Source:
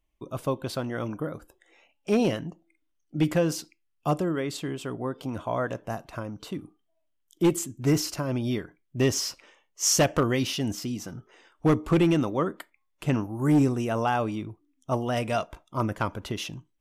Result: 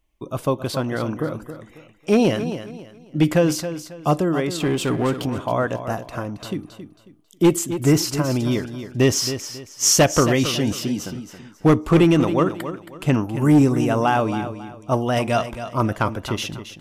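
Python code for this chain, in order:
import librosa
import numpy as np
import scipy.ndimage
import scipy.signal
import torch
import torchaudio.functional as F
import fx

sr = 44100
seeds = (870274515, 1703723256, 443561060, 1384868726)

p1 = fx.leveller(x, sr, passes=2, at=(4.6, 5.26))
p2 = p1 + fx.echo_feedback(p1, sr, ms=272, feedback_pct=30, wet_db=-11.0, dry=0)
y = F.gain(torch.from_numpy(p2), 6.5).numpy()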